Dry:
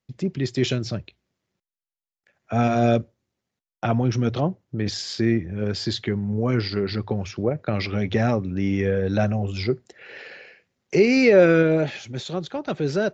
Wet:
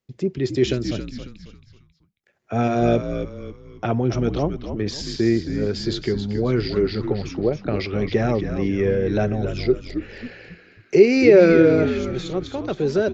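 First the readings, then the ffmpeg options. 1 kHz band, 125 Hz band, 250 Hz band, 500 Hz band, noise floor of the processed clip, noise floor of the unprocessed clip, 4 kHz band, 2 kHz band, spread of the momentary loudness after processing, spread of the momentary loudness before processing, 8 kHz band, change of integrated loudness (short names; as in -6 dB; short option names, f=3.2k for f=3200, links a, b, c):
-0.5 dB, -0.5 dB, +2.0 dB, +3.5 dB, -59 dBFS, under -85 dBFS, -1.0 dB, -1.0 dB, 15 LU, 13 LU, n/a, +2.0 dB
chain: -filter_complex "[0:a]equalizer=f=390:t=o:w=0.6:g=7.5,asplit=2[a][b];[b]asplit=4[c][d][e][f];[c]adelay=272,afreqshift=-69,volume=-8.5dB[g];[d]adelay=544,afreqshift=-138,volume=-16.7dB[h];[e]adelay=816,afreqshift=-207,volume=-24.9dB[i];[f]adelay=1088,afreqshift=-276,volume=-33dB[j];[g][h][i][j]amix=inputs=4:normalize=0[k];[a][k]amix=inputs=2:normalize=0,volume=-1.5dB"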